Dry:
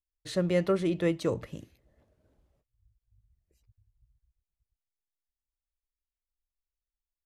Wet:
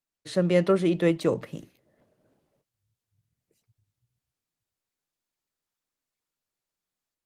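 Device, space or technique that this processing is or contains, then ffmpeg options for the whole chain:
video call: -af "highpass=frequency=130:width=0.5412,highpass=frequency=130:width=1.3066,dynaudnorm=framelen=120:gausssize=5:maxgain=5dB" -ar 48000 -c:a libopus -b:a 24k

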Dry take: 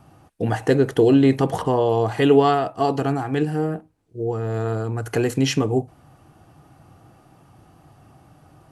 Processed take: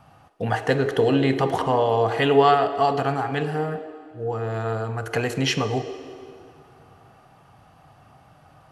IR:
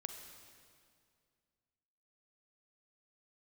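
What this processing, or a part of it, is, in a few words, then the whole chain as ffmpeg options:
filtered reverb send: -filter_complex "[0:a]asplit=2[link_01][link_02];[link_02]highpass=frequency=340:width=0.5412,highpass=frequency=340:width=1.3066,lowpass=5200[link_03];[1:a]atrim=start_sample=2205[link_04];[link_03][link_04]afir=irnorm=-1:irlink=0,volume=4dB[link_05];[link_01][link_05]amix=inputs=2:normalize=0,volume=-3.5dB"

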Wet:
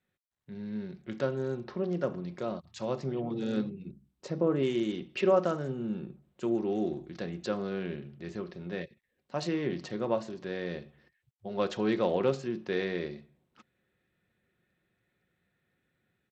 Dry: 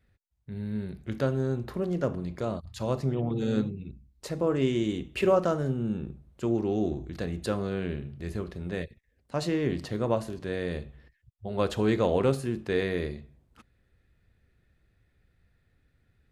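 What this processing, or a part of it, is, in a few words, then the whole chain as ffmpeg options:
Bluetooth headset: -filter_complex "[0:a]aecho=1:1:5.5:0.31,asettb=1/sr,asplit=3[link_01][link_02][link_03];[link_01]atrim=end=3.854[link_04];[link_02]atrim=start=3.85:end=4.63,asetpts=PTS-STARTPTS,afade=type=in:duration=0.004:curve=qsin,afade=type=out:start_time=0.776:duration=0.004:curve=qsin,tiltshelf=frequency=930:gain=4.5[link_05];[link_03]atrim=start=4.626[link_06];[link_04][link_05]acrossfade=duration=0.004:curve1=hsin:curve2=qsin[link_07];[link_07][link_06]acrossfade=duration=0.004:curve1=qsin:curve2=hsin,highpass=170,dynaudnorm=framelen=100:gausssize=5:maxgain=5.5dB,aresample=16000,aresample=44100,volume=-8.5dB" -ar 32000 -c:a sbc -b:a 64k

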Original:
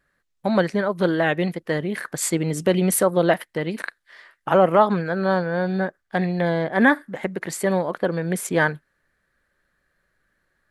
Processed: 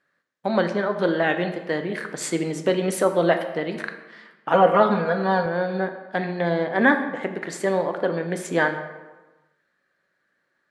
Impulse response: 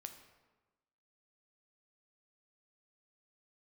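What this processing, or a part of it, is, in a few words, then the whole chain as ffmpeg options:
supermarket ceiling speaker: -filter_complex "[0:a]highpass=210,lowpass=6600[link_01];[1:a]atrim=start_sample=2205[link_02];[link_01][link_02]afir=irnorm=-1:irlink=0,asettb=1/sr,asplit=3[link_03][link_04][link_05];[link_03]atrim=end=4.534[link_06];[link_04]atrim=start=4.53:end=5.46,asetpts=PTS-STARTPTS,afade=type=in:duration=0.004:curve=qsin,afade=type=out:start_time=0.926:duration=0.004:curve=qsin,aecho=1:1:4.2:0.93,atrim=end_sample=41013[link_07];[link_05]atrim=start=5.456[link_08];[link_06][link_07]acrossfade=duration=0.004:curve1=hsin:curve2=qsin[link_09];[link_09][link_08]acrossfade=duration=0.004:curve1=qsin:curve2=hsin,volume=4.5dB"

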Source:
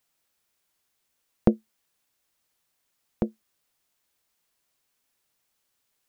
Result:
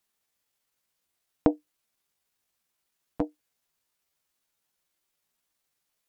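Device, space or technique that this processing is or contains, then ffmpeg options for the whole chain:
chipmunk voice: -af "asetrate=60591,aresample=44100,atempo=0.727827,volume=-2dB"

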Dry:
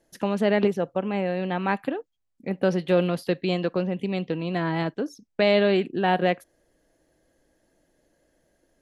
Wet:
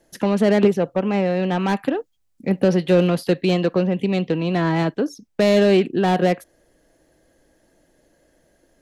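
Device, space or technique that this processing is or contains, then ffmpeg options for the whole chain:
one-band saturation: -filter_complex "[0:a]asettb=1/sr,asplit=3[link_01][link_02][link_03];[link_01]atrim=end=1.944[link_04];[link_02]atrim=start=1.94:end=2.65,asetpts=PTS-STARTPTS,afade=type=in:duration=0.004:curve=qsin,afade=type=out:start_time=0.706:duration=0.004:curve=qsin,bass=frequency=250:gain=3,treble=frequency=4000:gain=4[link_05];[link_03]atrim=start=2.646[link_06];[link_04][link_05]acrossfade=duration=0.004:curve1=hsin:curve2=qsin[link_07];[link_07][link_06]acrossfade=duration=0.004:curve1=qsin:curve2=hsin,acrossover=split=480|4800[link_08][link_09][link_10];[link_09]asoftclip=type=tanh:threshold=-27dB[link_11];[link_08][link_11][link_10]amix=inputs=3:normalize=0,volume=7dB"

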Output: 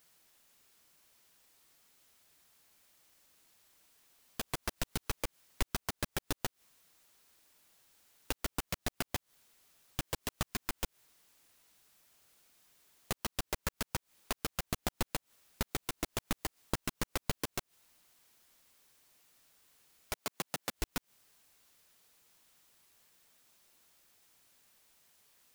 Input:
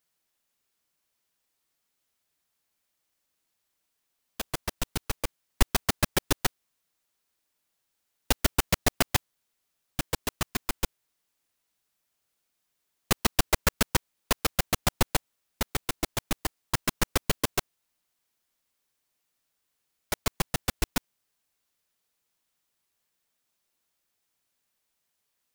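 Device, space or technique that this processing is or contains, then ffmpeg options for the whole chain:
de-esser from a sidechain: -filter_complex "[0:a]asplit=2[link_01][link_02];[link_02]highpass=frequency=4800:poles=1,apad=whole_len=1126659[link_03];[link_01][link_03]sidechaincompress=threshold=-45dB:ratio=20:attack=1.2:release=98,asettb=1/sr,asplit=3[link_04][link_05][link_06];[link_04]atrim=end=20.134[link_07];[link_05]atrim=start=20.13:end=20.74,asetpts=PTS-STARTPTS,afade=type=in:duration=0.004:curve=qsin,afade=type=out:start_time=0.606:duration=0.004:curve=qsin,highpass=200[link_08];[link_06]atrim=start=20.736[link_09];[link_07][link_08]acrossfade=duration=0.004:curve1=hsin:curve2=qsin[link_10];[link_10][link_09]acrossfade=duration=0.004:curve1=qsin:curve2=hsin,volume=11.5dB"

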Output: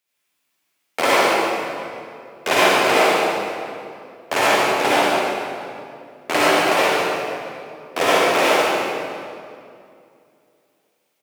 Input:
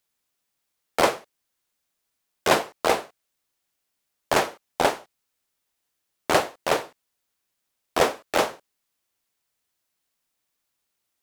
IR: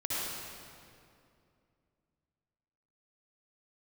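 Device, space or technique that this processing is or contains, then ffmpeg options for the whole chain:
PA in a hall: -filter_complex "[0:a]highpass=170,equalizer=frequency=2400:width_type=o:width=0.67:gain=6.5,aecho=1:1:145:0.447[link_01];[1:a]atrim=start_sample=2205[link_02];[link_01][link_02]afir=irnorm=-1:irlink=0"

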